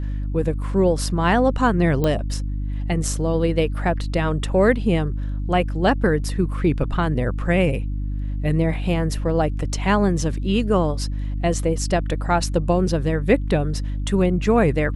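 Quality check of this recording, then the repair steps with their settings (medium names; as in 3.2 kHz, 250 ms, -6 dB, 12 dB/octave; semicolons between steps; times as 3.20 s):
hum 50 Hz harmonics 6 -25 dBFS
2.04 s: pop -10 dBFS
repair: de-click; de-hum 50 Hz, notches 6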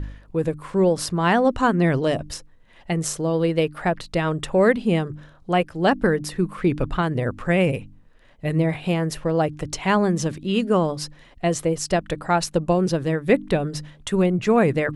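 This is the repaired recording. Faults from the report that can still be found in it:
nothing left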